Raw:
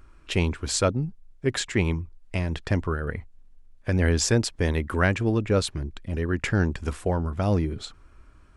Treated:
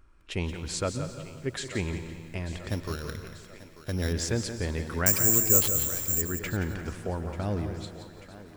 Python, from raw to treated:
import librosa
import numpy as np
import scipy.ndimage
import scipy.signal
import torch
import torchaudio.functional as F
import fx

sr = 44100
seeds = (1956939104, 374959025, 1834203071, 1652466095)

p1 = fx.sample_sort(x, sr, block=8, at=(2.69, 4.13))
p2 = p1 + fx.echo_thinned(p1, sr, ms=889, feedback_pct=64, hz=220.0, wet_db=-15.0, dry=0)
p3 = fx.rev_plate(p2, sr, seeds[0], rt60_s=1.9, hf_ratio=0.95, predelay_ms=110, drr_db=11.0)
p4 = fx.resample_bad(p3, sr, factor=6, down='none', up='zero_stuff', at=(5.06, 6.22))
p5 = fx.echo_crushed(p4, sr, ms=175, feedback_pct=35, bits=8, wet_db=-9.5)
y = p5 * librosa.db_to_amplitude(-7.5)